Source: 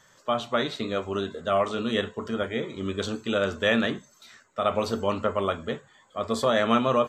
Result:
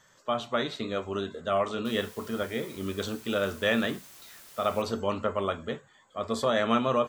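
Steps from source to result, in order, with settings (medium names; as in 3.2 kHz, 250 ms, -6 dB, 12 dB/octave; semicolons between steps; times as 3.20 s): 1.85–4.82 s: word length cut 8-bit, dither triangular; trim -3 dB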